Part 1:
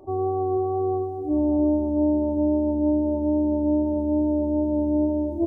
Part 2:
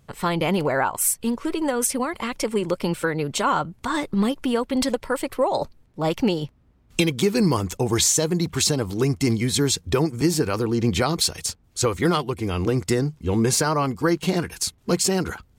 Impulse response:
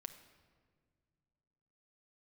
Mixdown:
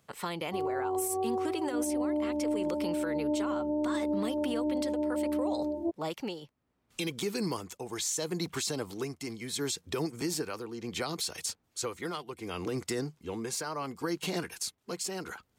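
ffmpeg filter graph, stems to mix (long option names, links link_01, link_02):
-filter_complex "[0:a]lowshelf=frequency=210:gain=-10.5,adelay=450,volume=-3.5dB[link_01];[1:a]lowshelf=frequency=230:gain=-10.5,tremolo=f=0.7:d=0.65,acrossover=split=380|3000[link_02][link_03][link_04];[link_03]acompressor=threshold=-29dB:ratio=6[link_05];[link_02][link_05][link_04]amix=inputs=3:normalize=0,volume=-4dB[link_06];[link_01][link_06]amix=inputs=2:normalize=0,highpass=frequency=120:poles=1,alimiter=limit=-23dB:level=0:latency=1:release=55"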